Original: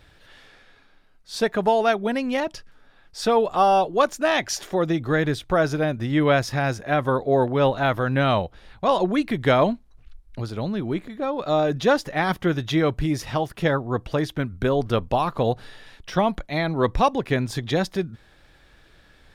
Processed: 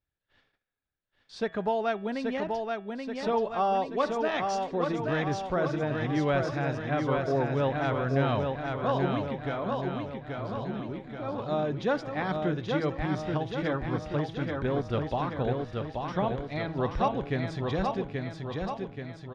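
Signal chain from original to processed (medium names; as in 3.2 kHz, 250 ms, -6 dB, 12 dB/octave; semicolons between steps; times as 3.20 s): high-pass 67 Hz 6 dB/octave; de-hum 162.5 Hz, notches 21; gate -49 dBFS, range -27 dB; bass shelf 110 Hz +8 dB; 9.15–11.25 s: compression 2:1, threshold -28 dBFS, peak gain reduction 8.5 dB; distance through air 120 m; feedback delay 830 ms, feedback 56%, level -4 dB; trim -8.5 dB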